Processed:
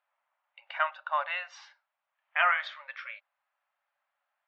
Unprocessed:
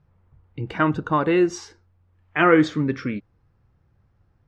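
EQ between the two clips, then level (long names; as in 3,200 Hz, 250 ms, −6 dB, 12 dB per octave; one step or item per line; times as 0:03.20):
linear-phase brick-wall high-pass 540 Hz
low-pass filter 3,300 Hz 24 dB per octave
spectral tilt +3.5 dB per octave
−6.5 dB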